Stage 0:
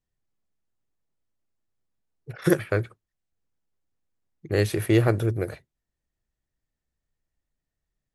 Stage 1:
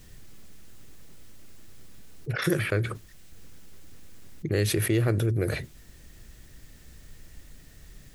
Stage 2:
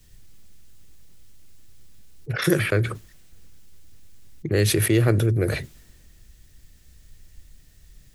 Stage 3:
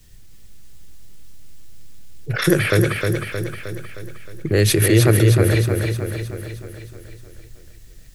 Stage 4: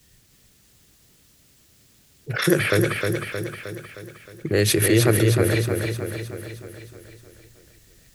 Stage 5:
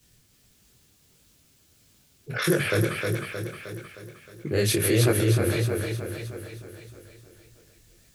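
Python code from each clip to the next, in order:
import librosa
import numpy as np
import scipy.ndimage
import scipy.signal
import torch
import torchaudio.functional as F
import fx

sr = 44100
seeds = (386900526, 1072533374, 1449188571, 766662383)

y1 = fx.peak_eq(x, sr, hz=830.0, db=-7.5, octaves=1.3)
y1 = fx.env_flatten(y1, sr, amount_pct=70)
y1 = y1 * 10.0 ** (-5.0 / 20.0)
y2 = fx.band_widen(y1, sr, depth_pct=40)
y2 = y2 * 10.0 ** (2.5 / 20.0)
y3 = fx.echo_feedback(y2, sr, ms=311, feedback_pct=56, wet_db=-4.5)
y3 = y3 * 10.0 ** (4.0 / 20.0)
y4 = fx.highpass(y3, sr, hz=150.0, slope=6)
y4 = y4 * 10.0 ** (-1.5 / 20.0)
y5 = fx.notch(y4, sr, hz=1900.0, q=14.0)
y5 = fx.detune_double(y5, sr, cents=55)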